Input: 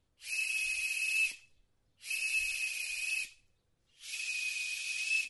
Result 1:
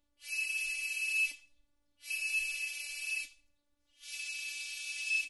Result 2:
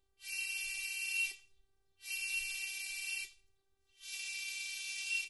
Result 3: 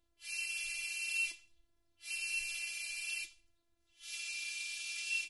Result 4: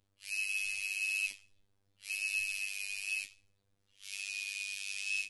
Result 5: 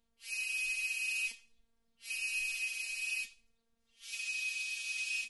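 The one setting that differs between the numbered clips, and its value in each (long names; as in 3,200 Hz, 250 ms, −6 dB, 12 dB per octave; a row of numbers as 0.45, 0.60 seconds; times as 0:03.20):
phases set to zero, frequency: 290, 390, 340, 99, 230 Hertz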